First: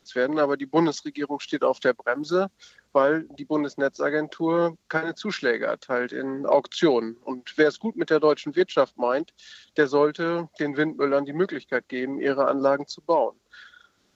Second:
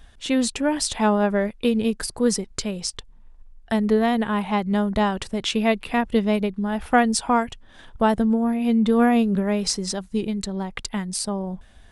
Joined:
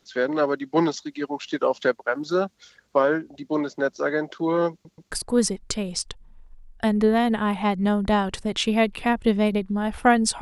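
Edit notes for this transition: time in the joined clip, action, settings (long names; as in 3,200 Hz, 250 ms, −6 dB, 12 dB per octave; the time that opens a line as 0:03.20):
first
0:04.72: stutter in place 0.13 s, 3 plays
0:05.11: continue with second from 0:01.99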